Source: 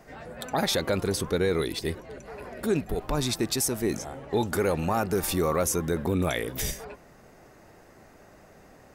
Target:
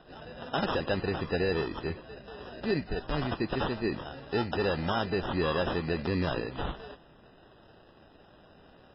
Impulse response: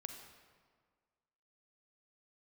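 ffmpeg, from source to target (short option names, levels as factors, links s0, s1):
-af "acrusher=samples=20:mix=1:aa=0.000001,volume=0.708" -ar 12000 -c:a libmp3lame -b:a 16k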